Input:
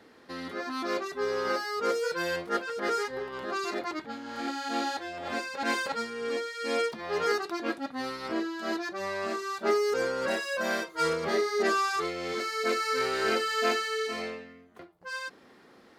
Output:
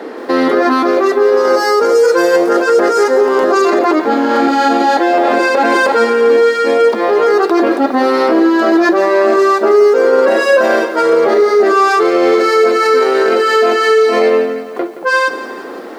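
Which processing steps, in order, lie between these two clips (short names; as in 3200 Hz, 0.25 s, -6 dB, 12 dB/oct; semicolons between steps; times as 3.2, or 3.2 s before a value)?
HPF 300 Hz 24 dB/oct; tilt shelf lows +8.5 dB, about 1400 Hz; vocal rider within 4 dB 0.5 s; 1.37–3.62 resonant high shelf 4600 Hz +7 dB, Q 1.5; maximiser +24.5 dB; lo-fi delay 0.172 s, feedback 55%, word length 6-bit, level -13 dB; gain -3 dB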